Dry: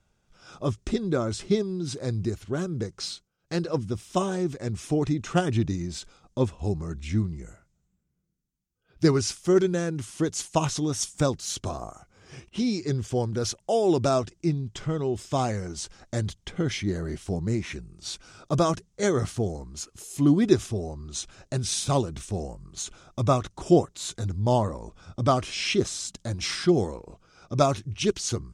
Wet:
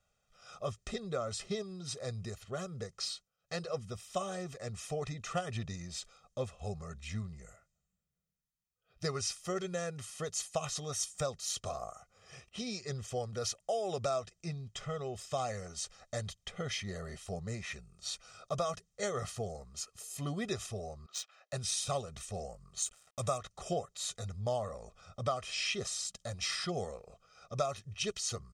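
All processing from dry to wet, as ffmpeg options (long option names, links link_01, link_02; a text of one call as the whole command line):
ffmpeg -i in.wav -filter_complex "[0:a]asettb=1/sr,asplit=3[link_01][link_02][link_03];[link_01]atrim=end=21.064[link_04];[link_02]atrim=start=21.06:end=21.53,asetpts=PTS-STARTPTS,afade=type=in:duration=0.004:curve=qsin,afade=type=out:start_time=0.466:duration=0.004:curve=qsin,highpass=890,adynamicsmooth=sensitivity=7.5:basefreq=3100[link_05];[link_03]atrim=start=21.526[link_06];[link_04][link_05]acrossfade=duration=0.004:curve1=hsin:curve2=qsin[link_07];[link_07][link_06]acrossfade=duration=0.004:curve1=qsin:curve2=hsin,asettb=1/sr,asplit=3[link_08][link_09][link_10];[link_08]atrim=end=22.824[link_11];[link_09]atrim=start=22.82:end=23.38,asetpts=PTS-STARTPTS,afade=type=in:duration=0.004:curve=qsin,afade=type=out:start_time=0.556:duration=0.004:curve=qsin,aeval=exprs='sgn(val(0))*max(abs(val(0))-0.00316,0)':channel_layout=same,equalizer=frequency=8600:width_type=o:width=0.81:gain=14.5[link_12];[link_10]atrim=start=23.376[link_13];[link_11][link_12]acrossfade=duration=0.004:curve1=hsin:curve2=qsin[link_14];[link_14][link_13]acrossfade=duration=0.004:curve1=qsin:curve2=hsin,lowshelf=frequency=290:gain=-11,aecho=1:1:1.6:0.89,acompressor=threshold=-25dB:ratio=3,volume=-6.5dB" out.wav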